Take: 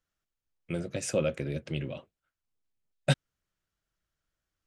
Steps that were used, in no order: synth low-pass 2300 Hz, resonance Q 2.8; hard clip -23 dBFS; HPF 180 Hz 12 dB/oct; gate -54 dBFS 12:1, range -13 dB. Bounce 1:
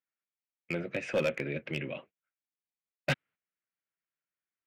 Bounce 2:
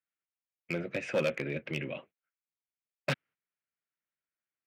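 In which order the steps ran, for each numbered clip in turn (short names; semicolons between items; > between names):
HPF > gate > synth low-pass > hard clip; synth low-pass > hard clip > gate > HPF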